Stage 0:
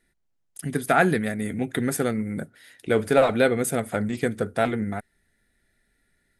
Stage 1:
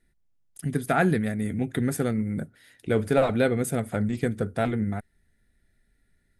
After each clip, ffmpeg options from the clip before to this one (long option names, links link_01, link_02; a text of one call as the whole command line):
ffmpeg -i in.wav -af "lowshelf=frequency=210:gain=11,volume=-5dB" out.wav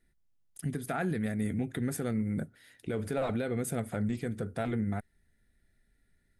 ffmpeg -i in.wav -af "alimiter=limit=-20.5dB:level=0:latency=1:release=93,volume=-3dB" out.wav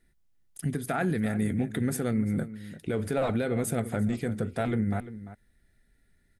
ffmpeg -i in.wav -filter_complex "[0:a]asplit=2[link_01][link_02];[link_02]adelay=344,volume=-14dB,highshelf=frequency=4000:gain=-7.74[link_03];[link_01][link_03]amix=inputs=2:normalize=0,volume=4dB" out.wav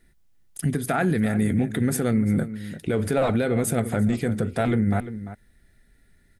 ffmpeg -i in.wav -af "alimiter=limit=-21.5dB:level=0:latency=1:release=118,volume=7.5dB" out.wav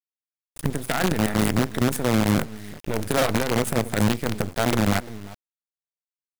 ffmpeg -i in.wav -af "acrusher=bits=4:dc=4:mix=0:aa=0.000001" out.wav